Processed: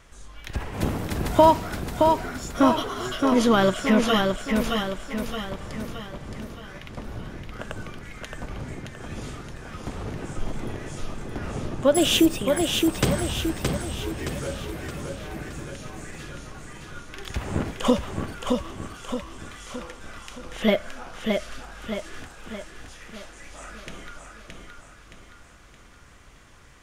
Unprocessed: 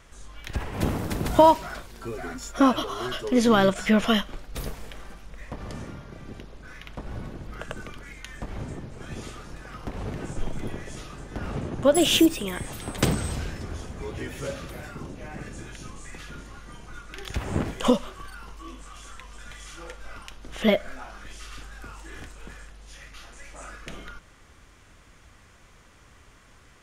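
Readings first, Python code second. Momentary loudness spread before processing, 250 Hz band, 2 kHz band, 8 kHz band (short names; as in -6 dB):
23 LU, +1.5 dB, +2.0 dB, +2.0 dB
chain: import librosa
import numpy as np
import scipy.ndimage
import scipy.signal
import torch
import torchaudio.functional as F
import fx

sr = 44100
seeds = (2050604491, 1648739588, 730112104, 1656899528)

y = fx.echo_feedback(x, sr, ms=620, feedback_pct=49, wet_db=-4.0)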